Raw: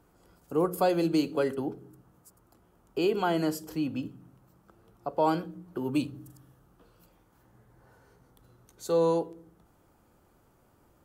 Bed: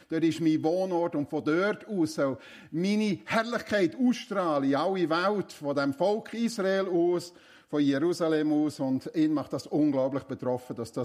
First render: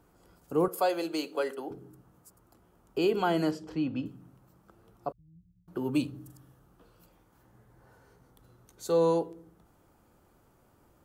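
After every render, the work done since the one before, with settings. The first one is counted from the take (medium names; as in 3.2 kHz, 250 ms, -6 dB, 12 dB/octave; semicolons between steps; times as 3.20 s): 0.68–1.71 s: high-pass 480 Hz; 3.51–4.06 s: low-pass 4 kHz; 5.12–5.68 s: inverse Chebyshev band-stop 550–9600 Hz, stop band 80 dB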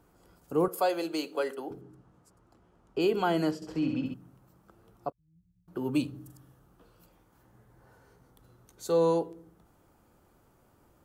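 1.81–3.00 s: distance through air 66 m; 3.55–4.14 s: flutter echo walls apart 11.7 m, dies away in 0.87 s; 5.10–5.87 s: fade in linear, from -17 dB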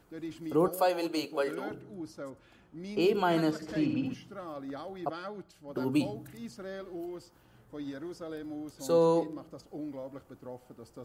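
add bed -14.5 dB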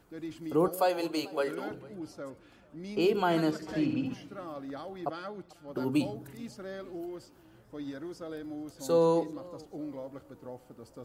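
modulated delay 441 ms, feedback 42%, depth 138 cents, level -23 dB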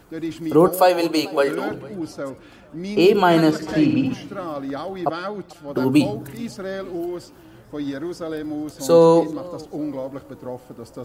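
trim +12 dB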